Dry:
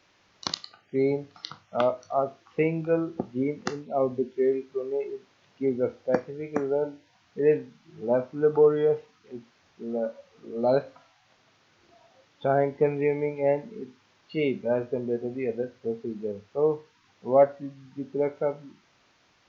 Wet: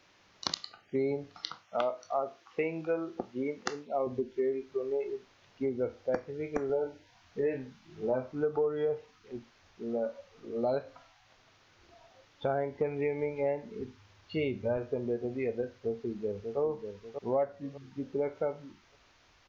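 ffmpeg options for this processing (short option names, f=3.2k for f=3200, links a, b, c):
-filter_complex "[0:a]asettb=1/sr,asplit=3[a][b][c];[a]atrim=end=1.494[d];[b]atrim=start=1.49:end=4.07,asetpts=PTS-STARTPTS,afade=t=in:d=0.004:c=qsin,afade=t=out:st=2.576:d=0.004:c=qsin,highpass=f=380:p=1[e];[c]atrim=start=4.066[f];[d][e]acrossfade=d=0.004:c1=hsin:c2=qsin[g];[g][f]acrossfade=d=0.004:c1=qsin:c2=hsin,asettb=1/sr,asplit=3[h][i][j];[h]atrim=end=6.674[k];[i]atrim=start=6.67:end=8.32,asetpts=PTS-STARTPTS,afade=t=in:d=0.004:c=qsin,afade=t=out:st=1.646:d=0.004:c=qsin,asplit=2[l][m];[m]adelay=23,volume=-4.5dB[n];[l][n]amix=inputs=2:normalize=0,atrim=end_sample=72765[o];[j]atrim=start=8.316[p];[k][o]acrossfade=d=0.004:c1=hsin:c2=qsin[q];[q][p]acrossfade=d=0.004:c1=qsin:c2=hsin,asettb=1/sr,asplit=3[r][s][t];[r]atrim=end=13.804[u];[s]atrim=start=13.8:end=14.77,asetpts=PTS-STARTPTS,afade=t=in:d=0.004:c=qsin,afade=t=out:st=0.966:d=0.004:c=qsin,equalizer=f=88:t=o:w=0.77:g=14.5[v];[t]atrim=start=14.766[w];[u][v]acrossfade=d=0.004:c1=hsin:c2=qsin[x];[x][w]acrossfade=d=0.004:c1=qsin:c2=hsin,asplit=2[y][z];[z]afade=t=in:st=15.78:d=0.01,afade=t=out:st=16.59:d=0.01,aecho=0:1:590|1180|1770|2360:0.398107|0.139338|0.0487681|0.0170688[aa];[y][aa]amix=inputs=2:normalize=0,acompressor=threshold=-27dB:ratio=4,asubboost=boost=6:cutoff=64"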